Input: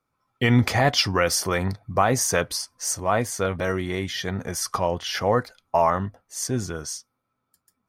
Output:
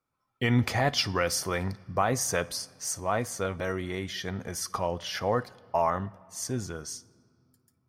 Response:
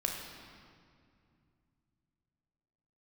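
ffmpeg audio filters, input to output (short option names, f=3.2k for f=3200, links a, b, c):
-filter_complex "[0:a]asplit=2[a][b];[1:a]atrim=start_sample=2205,adelay=56[c];[b][c]afir=irnorm=-1:irlink=0,volume=-24dB[d];[a][d]amix=inputs=2:normalize=0,volume=-6dB"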